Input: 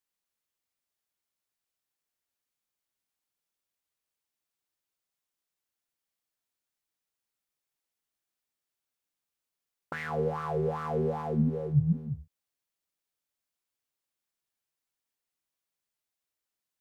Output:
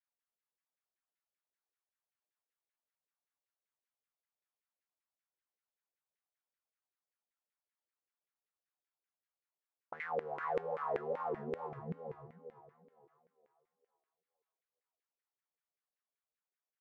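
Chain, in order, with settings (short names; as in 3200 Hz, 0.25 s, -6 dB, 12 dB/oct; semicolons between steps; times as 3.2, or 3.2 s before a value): thinning echo 0.459 s, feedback 41%, high-pass 300 Hz, level -3.5 dB; wow and flutter 100 cents; LFO band-pass saw down 5.2 Hz 420–2100 Hz; gain -1.5 dB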